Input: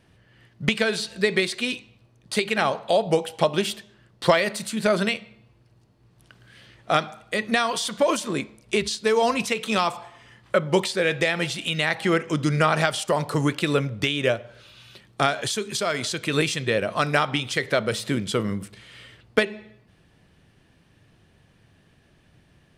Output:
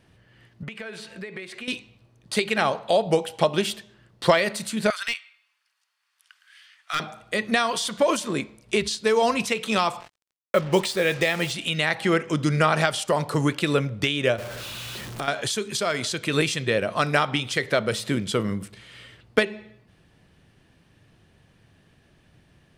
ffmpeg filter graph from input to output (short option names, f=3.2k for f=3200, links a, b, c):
-filter_complex "[0:a]asettb=1/sr,asplit=3[a][b][c];[a]atrim=end=0.634[d];[b]atrim=start=0.63:end=1.68,asetpts=PTS-STARTPTS,afade=t=in:d=0.004:c=qsin,afade=t=out:st=1.046:d=0.004:c=qsin,highpass=f=160:p=1,highshelf=f=3.1k:t=q:w=1.5:g=-7,acompressor=threshold=-35dB:ratio=4:attack=3.2:release=140:knee=1:detection=peak[e];[c]atrim=start=1.676[f];[d][e]acrossfade=d=0.004:c1=hsin:c2=qsin[g];[g][f]acrossfade=d=0.004:c1=qsin:c2=hsin,asettb=1/sr,asplit=3[h][i][j];[h]atrim=end=4.904[k];[i]atrim=start=4.9:end=7,asetpts=PTS-STARTPTS,afade=t=in:d=0.004:c=qsin,afade=t=out:st=2.096:d=0.004:c=qsin,highpass=f=1.3k:w=0.5412,highpass=f=1.3k:w=1.3066,bandreject=f=4k:w=22,aeval=exprs='clip(val(0),-1,0.0841)':c=same[l];[j]atrim=start=6.996[m];[k][l]acrossfade=d=0.004:c1=hsin:c2=qsin[n];[n][m]acrossfade=d=0.004:c1=qsin:c2=hsin,asettb=1/sr,asplit=3[o][p][q];[o]atrim=end=10.004[r];[p]atrim=start=10:end=11.52,asetpts=PTS-STARTPTS,afade=t=in:d=0.004:c=qsin,afade=t=out:st=1.516:d=0.004:c=qsin,bandreject=f=1.5k:w=14,acrusher=bits=5:mix=0:aa=0.5[s];[q]atrim=start=11.516[t];[r][s]acrossfade=d=0.004:c1=hsin:c2=qsin[u];[u][t]acrossfade=d=0.004:c1=qsin:c2=hsin,asettb=1/sr,asplit=3[v][w][x];[v]atrim=end=14.384[y];[w]atrim=start=14.38:end=15.28,asetpts=PTS-STARTPTS,afade=t=in:d=0.004:c=qsin,afade=t=out:st=0.896:d=0.004:c=qsin,aeval=exprs='val(0)+0.5*0.0266*sgn(val(0))':c=same,acompressor=threshold=-29dB:ratio=3:attack=3.2:release=140:knee=1:detection=peak[z];[x]atrim=start=15.276[aa];[y][z]acrossfade=d=0.004:c1=hsin:c2=qsin[ab];[ab][aa]acrossfade=d=0.004:c1=qsin:c2=hsin"